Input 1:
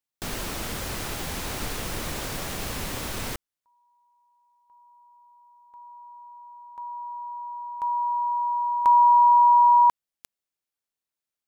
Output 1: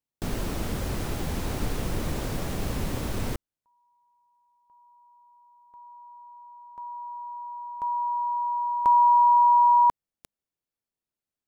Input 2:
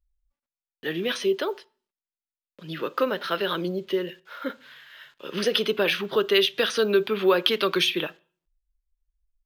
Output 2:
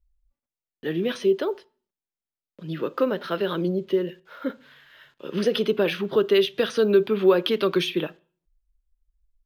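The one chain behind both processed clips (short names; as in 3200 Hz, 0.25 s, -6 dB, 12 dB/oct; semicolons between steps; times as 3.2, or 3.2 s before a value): tilt shelf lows +6 dB, about 690 Hz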